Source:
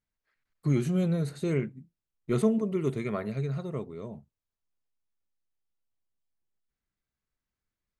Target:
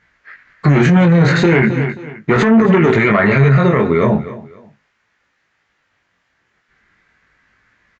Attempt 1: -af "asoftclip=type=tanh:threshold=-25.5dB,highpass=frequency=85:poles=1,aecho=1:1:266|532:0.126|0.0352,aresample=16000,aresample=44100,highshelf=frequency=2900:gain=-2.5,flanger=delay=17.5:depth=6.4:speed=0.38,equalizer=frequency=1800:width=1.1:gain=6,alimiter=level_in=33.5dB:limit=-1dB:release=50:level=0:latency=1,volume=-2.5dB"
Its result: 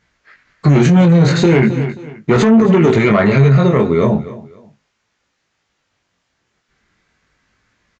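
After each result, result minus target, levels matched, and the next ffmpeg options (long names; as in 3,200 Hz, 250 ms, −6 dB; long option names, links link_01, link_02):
2,000 Hz band −5.5 dB; 8,000 Hz band +4.5 dB
-af "asoftclip=type=tanh:threshold=-25.5dB,highpass=frequency=85:poles=1,aecho=1:1:266|532:0.126|0.0352,aresample=16000,aresample=44100,highshelf=frequency=2900:gain=-2.5,flanger=delay=17.5:depth=6.4:speed=0.38,equalizer=frequency=1800:width=1.1:gain=16.5,alimiter=level_in=33.5dB:limit=-1dB:release=50:level=0:latency=1,volume=-2.5dB"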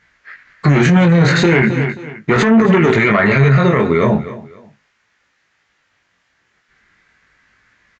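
8,000 Hz band +5.0 dB
-af "asoftclip=type=tanh:threshold=-25.5dB,highpass=frequency=85:poles=1,aecho=1:1:266|532:0.126|0.0352,aresample=16000,aresample=44100,highshelf=frequency=2900:gain=-9,flanger=delay=17.5:depth=6.4:speed=0.38,equalizer=frequency=1800:width=1.1:gain=16.5,alimiter=level_in=33.5dB:limit=-1dB:release=50:level=0:latency=1,volume=-2.5dB"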